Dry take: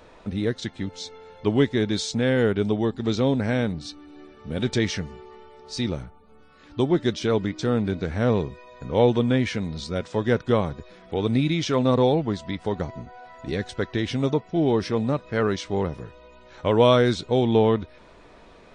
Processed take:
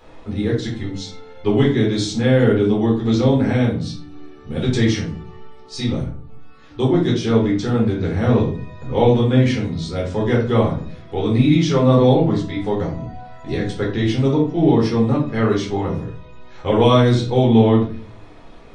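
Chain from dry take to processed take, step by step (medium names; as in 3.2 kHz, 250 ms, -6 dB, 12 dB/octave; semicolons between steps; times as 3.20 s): simulated room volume 330 m³, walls furnished, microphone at 4 m; trim -3 dB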